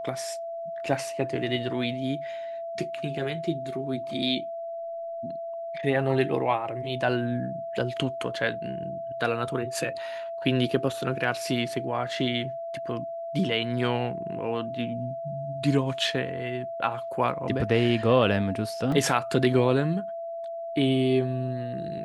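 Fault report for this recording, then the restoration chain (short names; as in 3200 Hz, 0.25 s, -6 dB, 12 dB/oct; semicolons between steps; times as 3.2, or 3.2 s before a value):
tone 670 Hz -32 dBFS
18.92 gap 3.2 ms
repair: notch 670 Hz, Q 30; interpolate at 18.92, 3.2 ms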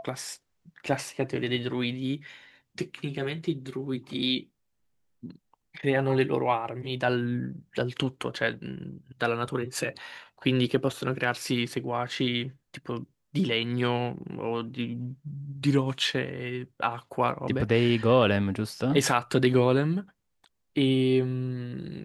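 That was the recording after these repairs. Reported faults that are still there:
none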